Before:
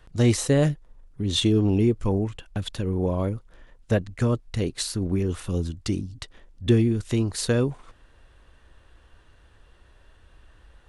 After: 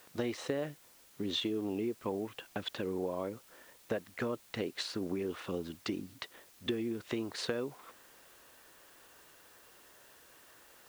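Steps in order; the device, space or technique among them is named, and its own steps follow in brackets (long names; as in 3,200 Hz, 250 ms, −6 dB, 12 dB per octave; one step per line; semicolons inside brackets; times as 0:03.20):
baby monitor (band-pass filter 320–3,300 Hz; downward compressor, threshold −32 dBFS, peak gain reduction 12.5 dB; white noise bed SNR 22 dB)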